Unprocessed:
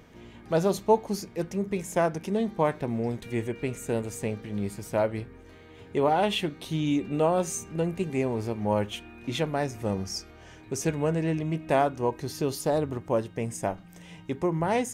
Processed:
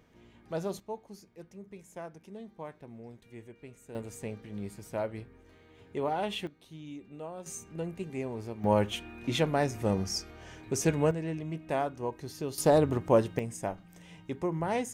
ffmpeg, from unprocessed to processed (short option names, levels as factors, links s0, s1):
-af "asetnsamples=n=441:p=0,asendcmd='0.8 volume volume -18dB;3.95 volume volume -8dB;6.47 volume volume -18dB;7.46 volume volume -8.5dB;8.64 volume volume 0.5dB;11.11 volume volume -7.5dB;12.58 volume volume 3dB;13.39 volume volume -5dB',volume=0.316"